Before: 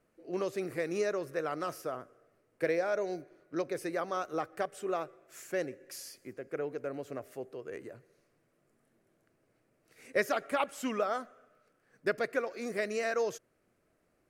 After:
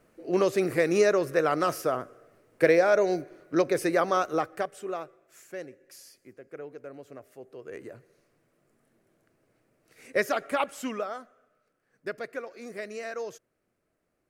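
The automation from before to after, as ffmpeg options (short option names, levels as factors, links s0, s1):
-af "volume=8.41,afade=t=out:st=4.1:d=0.64:silence=0.354813,afade=t=out:st=4.74:d=0.72:silence=0.501187,afade=t=in:st=7.39:d=0.51:silence=0.375837,afade=t=out:st=10.68:d=0.47:silence=0.421697"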